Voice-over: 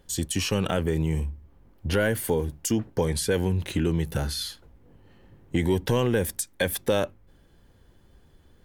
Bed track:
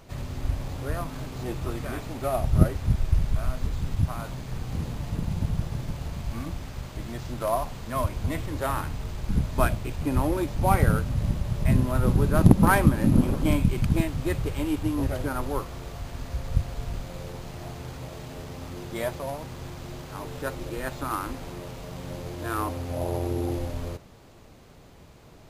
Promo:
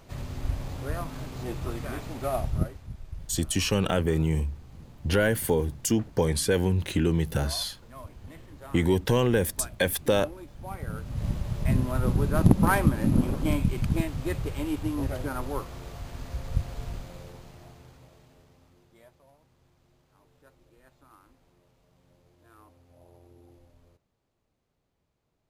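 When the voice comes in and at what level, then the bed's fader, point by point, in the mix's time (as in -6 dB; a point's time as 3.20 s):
3.20 s, +0.5 dB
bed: 2.39 s -2 dB
2.88 s -17 dB
10.78 s -17 dB
11.26 s -3 dB
16.88 s -3 dB
19.10 s -27 dB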